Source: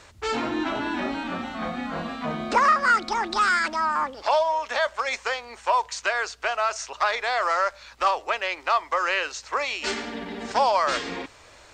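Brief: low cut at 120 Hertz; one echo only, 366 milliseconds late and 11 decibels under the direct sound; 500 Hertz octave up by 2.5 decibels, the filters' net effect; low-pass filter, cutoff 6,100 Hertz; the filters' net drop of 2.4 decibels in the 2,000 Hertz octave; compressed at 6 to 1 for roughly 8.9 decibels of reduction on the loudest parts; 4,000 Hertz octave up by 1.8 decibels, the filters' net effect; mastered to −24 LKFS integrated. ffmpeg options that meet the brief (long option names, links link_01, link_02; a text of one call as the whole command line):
ffmpeg -i in.wav -af "highpass=120,lowpass=6100,equalizer=frequency=500:width_type=o:gain=3.5,equalizer=frequency=2000:width_type=o:gain=-4.5,equalizer=frequency=4000:width_type=o:gain=4.5,acompressor=threshold=-25dB:ratio=6,aecho=1:1:366:0.282,volume=5.5dB" out.wav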